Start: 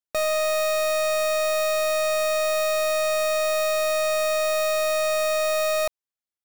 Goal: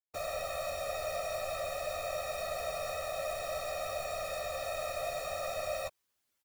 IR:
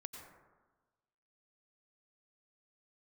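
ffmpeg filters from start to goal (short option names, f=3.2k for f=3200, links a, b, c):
-filter_complex "[0:a]areverse,acompressor=mode=upward:threshold=-46dB:ratio=2.5,areverse,afftfilt=real='hypot(re,im)*cos(2*PI*random(0))':imag='hypot(re,im)*sin(2*PI*random(1))':win_size=512:overlap=0.75,asplit=2[a][b];[b]adelay=13,volume=-8dB[c];[a][c]amix=inputs=2:normalize=0,volume=-8.5dB"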